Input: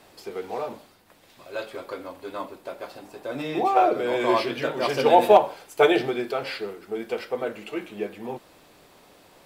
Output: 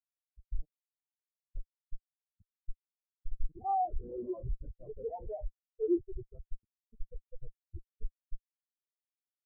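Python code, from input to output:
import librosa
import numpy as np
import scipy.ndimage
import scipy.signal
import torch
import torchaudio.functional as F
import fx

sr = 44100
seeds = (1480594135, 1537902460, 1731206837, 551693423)

y = fx.schmitt(x, sr, flips_db=-23.0)
y = fx.spectral_expand(y, sr, expansion=4.0)
y = y * 10.0 ** (-1.0 / 20.0)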